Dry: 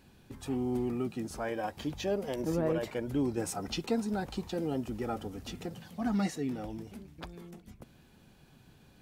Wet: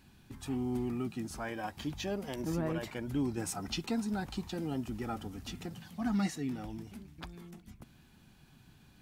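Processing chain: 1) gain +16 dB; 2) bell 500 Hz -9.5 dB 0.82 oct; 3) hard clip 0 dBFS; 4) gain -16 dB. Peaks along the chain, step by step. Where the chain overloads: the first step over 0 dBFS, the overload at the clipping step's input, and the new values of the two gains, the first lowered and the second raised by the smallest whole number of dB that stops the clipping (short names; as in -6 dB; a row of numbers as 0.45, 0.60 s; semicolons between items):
-2.0, -5.0, -5.0, -21.0 dBFS; no overload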